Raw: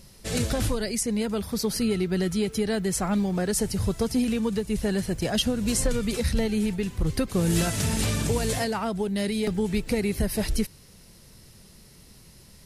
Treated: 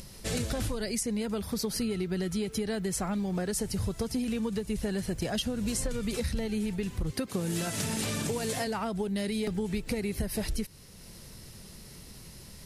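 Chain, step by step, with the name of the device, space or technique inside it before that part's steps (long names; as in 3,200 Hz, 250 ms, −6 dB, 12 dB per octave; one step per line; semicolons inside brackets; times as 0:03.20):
0:07.11–0:08.67: high-pass filter 140 Hz 12 dB per octave
upward and downward compression (upward compression, threshold −41 dBFS; downward compressor, threshold −28 dBFS, peak gain reduction 9.5 dB)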